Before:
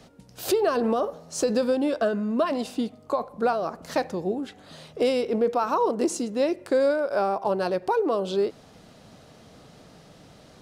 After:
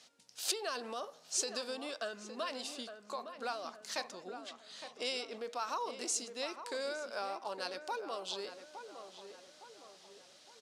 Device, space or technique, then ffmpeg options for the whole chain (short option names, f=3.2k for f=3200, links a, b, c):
piezo pickup straight into a mixer: -filter_complex "[0:a]asettb=1/sr,asplit=3[a][b][c];[a]atrim=end=4.124[d];[b]atrim=start=4.12:end=5.36,asetpts=PTS-STARTPTS,afade=t=in:d=0.004:c=qsin,afade=t=out:st=1.236:d=0.004:c=qsin,lowpass=9.6k[e];[c]atrim=start=5.356[f];[d][e]acrossfade=d=0.004:c1=hsin:c2=qsin[g];[g][f]acrossfade=d=0.004:c1=qsin:c2=hsin,lowpass=6.3k,aderivative,equalizer=f=250:t=o:w=0.22:g=3.5,asplit=2[h][i];[i]adelay=862,lowpass=f=1.9k:p=1,volume=-9dB,asplit=2[j][k];[k]adelay=862,lowpass=f=1.9k:p=1,volume=0.48,asplit=2[l][m];[m]adelay=862,lowpass=f=1.9k:p=1,volume=0.48,asplit=2[n][o];[o]adelay=862,lowpass=f=1.9k:p=1,volume=0.48,asplit=2[p][q];[q]adelay=862,lowpass=f=1.9k:p=1,volume=0.48[r];[h][j][l][n][p][r]amix=inputs=6:normalize=0,volume=4dB"